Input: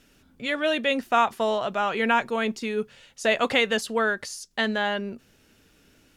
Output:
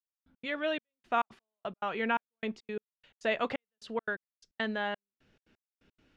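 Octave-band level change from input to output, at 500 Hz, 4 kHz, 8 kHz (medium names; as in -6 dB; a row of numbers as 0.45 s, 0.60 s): -10.5 dB, -13.5 dB, under -20 dB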